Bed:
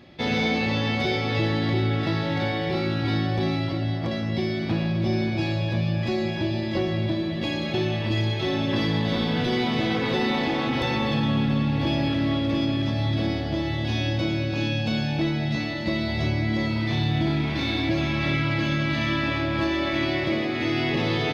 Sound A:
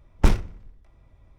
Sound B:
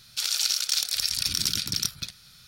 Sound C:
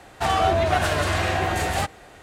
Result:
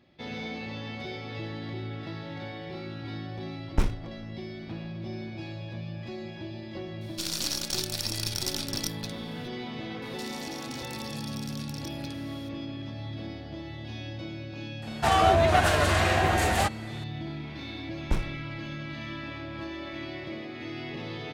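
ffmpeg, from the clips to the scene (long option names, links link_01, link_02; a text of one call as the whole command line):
ffmpeg -i bed.wav -i cue0.wav -i cue1.wav -i cue2.wav -filter_complex "[1:a]asplit=2[link_01][link_02];[2:a]asplit=2[link_03][link_04];[0:a]volume=-13dB[link_05];[link_03]aeval=exprs='if(lt(val(0),0),0.447*val(0),val(0))':channel_layout=same[link_06];[link_04]acompressor=threshold=-37dB:ratio=6:attack=3.2:release=140:knee=1:detection=peak[link_07];[link_01]atrim=end=1.38,asetpts=PTS-STARTPTS,volume=-7dB,afade=type=in:duration=0.004:curve=hsin,afade=type=out:start_time=1.376:duration=0.004:curve=hsin,adelay=3540[link_08];[link_06]atrim=end=2.47,asetpts=PTS-STARTPTS,volume=-3.5dB,afade=type=in:duration=0.004:curve=hsin,afade=type=out:start_time=2.466:duration=0.004:curve=hsin,adelay=7010[link_09];[link_07]atrim=end=2.47,asetpts=PTS-STARTPTS,volume=-3.5dB,afade=type=in:duration=0.004:curve=hsin,afade=type=out:start_time=2.466:duration=0.004:curve=hsin,adelay=441882S[link_10];[3:a]atrim=end=2.22,asetpts=PTS-STARTPTS,volume=-0.5dB,afade=type=in:duration=0.004:curve=hsin,afade=type=out:start_time=2.216:duration=0.004:curve=hsin,adelay=14820[link_11];[link_02]atrim=end=1.38,asetpts=PTS-STARTPTS,volume=-10dB,afade=type=in:duration=0.004:curve=hsin,afade=type=out:start_time=1.376:duration=0.004:curve=hsin,adelay=17870[link_12];[link_05][link_08][link_09][link_10][link_11][link_12]amix=inputs=6:normalize=0" out.wav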